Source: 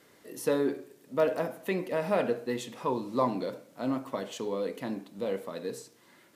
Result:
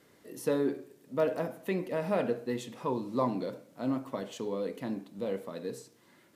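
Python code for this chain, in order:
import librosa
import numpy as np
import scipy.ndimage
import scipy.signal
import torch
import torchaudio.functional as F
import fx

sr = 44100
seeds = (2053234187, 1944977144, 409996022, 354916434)

y = fx.low_shelf(x, sr, hz=330.0, db=6.0)
y = y * 10.0 ** (-4.0 / 20.0)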